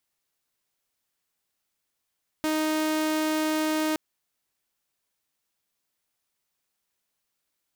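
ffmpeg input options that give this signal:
-f lavfi -i "aevalsrc='0.0891*(2*mod(311*t,1)-1)':d=1.52:s=44100"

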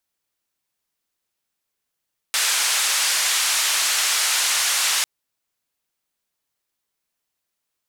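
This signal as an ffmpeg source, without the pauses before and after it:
-f lavfi -i "anoisesrc=c=white:d=2.7:r=44100:seed=1,highpass=f=1100,lowpass=f=8800,volume=-11.2dB"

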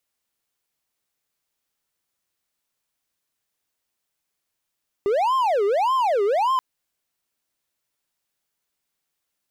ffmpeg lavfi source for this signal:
-f lavfi -i "aevalsrc='0.168*(1-4*abs(mod((728*t-332/(2*PI*1.7)*sin(2*PI*1.7*t))+0.25,1)-0.5))':d=1.53:s=44100"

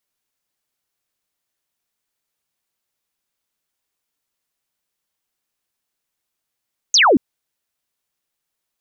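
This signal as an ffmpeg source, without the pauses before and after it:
-f lavfi -i "aevalsrc='0.355*clip(t/0.002,0,1)*clip((0.23-t)/0.002,0,1)*sin(2*PI*6800*0.23/log(220/6800)*(exp(log(220/6800)*t/0.23)-1))':d=0.23:s=44100"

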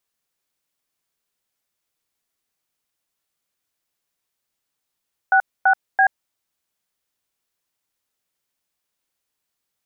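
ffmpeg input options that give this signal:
-f lavfi -i "aevalsrc='0.2*clip(min(mod(t,0.334),0.081-mod(t,0.334))/0.002,0,1)*(eq(floor(t/0.334),0)*(sin(2*PI*770*mod(t,0.334))+sin(2*PI*1477*mod(t,0.334)))+eq(floor(t/0.334),1)*(sin(2*PI*770*mod(t,0.334))+sin(2*PI*1477*mod(t,0.334)))+eq(floor(t/0.334),2)*(sin(2*PI*770*mod(t,0.334))+sin(2*PI*1633*mod(t,0.334))))':d=1.002:s=44100"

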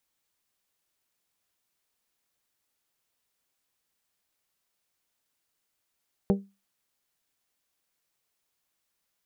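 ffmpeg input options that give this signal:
-f lavfi -i "aevalsrc='0.141*pow(10,-3*t/0.27)*sin(2*PI*197*t)+0.0891*pow(10,-3*t/0.166)*sin(2*PI*394*t)+0.0562*pow(10,-3*t/0.146)*sin(2*PI*472.8*t)+0.0355*pow(10,-3*t/0.125)*sin(2*PI*591*t)+0.0224*pow(10,-3*t/0.102)*sin(2*PI*788*t)':d=0.89:s=44100"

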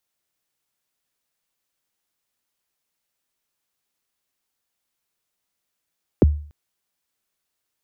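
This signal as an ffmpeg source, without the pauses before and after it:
-f lavfi -i "aevalsrc='0.447*pow(10,-3*t/0.46)*sin(2*PI*(530*0.021/log(74/530)*(exp(log(74/530)*min(t,0.021)/0.021)-1)+74*max(t-0.021,0)))':d=0.29:s=44100"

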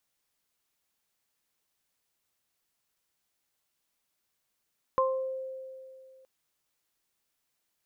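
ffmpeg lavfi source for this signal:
-f lavfi -i "aevalsrc='0.0631*pow(10,-3*t/2.48)*sin(2*PI*525*t)+0.0891*pow(10,-3*t/0.44)*sin(2*PI*1050*t)':d=1.27:s=44100"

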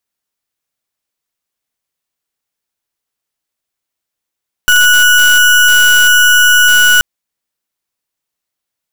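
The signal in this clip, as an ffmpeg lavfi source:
-f lavfi -i "aevalsrc='0.447*(2*lt(mod(1470*t,1),0.31)-1)':d=2.33:s=44100"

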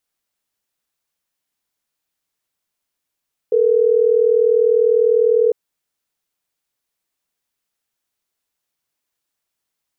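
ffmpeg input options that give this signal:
-f lavfi -i "aevalsrc='0.2*(sin(2*PI*440*t)+sin(2*PI*480*t))*clip(min(mod(t,6),2-mod(t,6))/0.005,0,1)':d=3.12:s=44100"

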